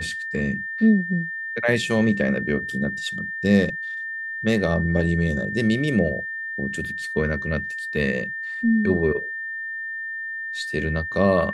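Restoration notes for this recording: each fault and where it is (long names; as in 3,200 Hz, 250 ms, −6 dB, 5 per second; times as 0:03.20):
whistle 1,800 Hz −28 dBFS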